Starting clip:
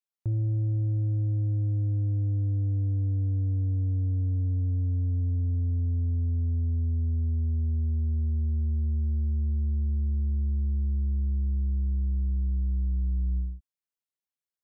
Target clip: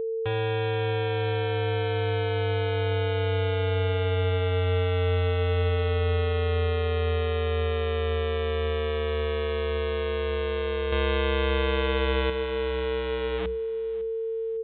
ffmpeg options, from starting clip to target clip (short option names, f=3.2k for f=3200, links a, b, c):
-filter_complex "[0:a]asplit=2[a][b];[b]aeval=exprs='(mod(25.1*val(0)+1,2)-1)/25.1':c=same,volume=-4dB[c];[a][c]amix=inputs=2:normalize=0,equalizer=f=88:t=o:w=0.49:g=11.5,asettb=1/sr,asplit=3[d][e][f];[d]atrim=end=10.924[g];[e]atrim=start=10.92:end=12.3,asetpts=PTS-STARTPTS,afade=t=in:d=0.004:c=qsin,afade=t=out:st=1.376:d=0.004:c=qsin,acontrast=67[h];[f]atrim=start=12.296[i];[g][h]acrossfade=d=0.004:c1=hsin:c2=qsin[j];[j][i]acrossfade=d=0.004:c1=qsin:c2=hsin,aemphasis=mode=production:type=riaa,aeval=exprs='val(0)+0.0282*sin(2*PI*450*n/s)':c=same,asplit=2[k][l];[l]aecho=0:1:554|1108|1662:0.112|0.0348|0.0108[m];[k][m]amix=inputs=2:normalize=0,aresample=8000,aresample=44100,volume=4.5dB"